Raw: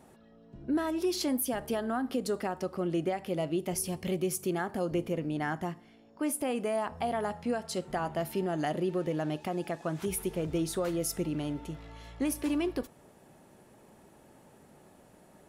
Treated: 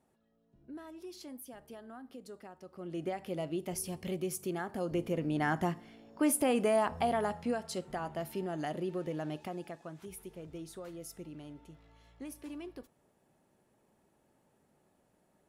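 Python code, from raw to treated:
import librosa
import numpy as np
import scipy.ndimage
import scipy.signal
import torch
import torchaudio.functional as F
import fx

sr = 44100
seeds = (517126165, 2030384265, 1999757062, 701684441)

y = fx.gain(x, sr, db=fx.line((2.64, -17.0), (3.09, -5.0), (4.68, -5.0), (5.62, 3.0), (6.83, 3.0), (7.98, -5.5), (9.42, -5.5), (10.01, -14.0)))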